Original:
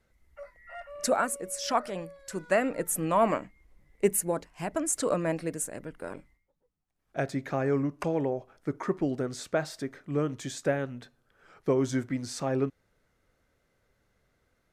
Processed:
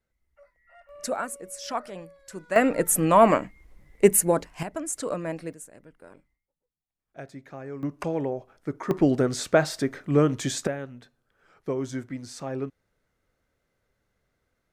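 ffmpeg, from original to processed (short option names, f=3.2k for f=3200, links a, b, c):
-af "asetnsamples=n=441:p=0,asendcmd='0.89 volume volume -3.5dB;2.56 volume volume 7.5dB;4.63 volume volume -2.5dB;5.53 volume volume -10.5dB;7.83 volume volume 0.5dB;8.91 volume volume 8.5dB;10.67 volume volume -3.5dB',volume=-11dB"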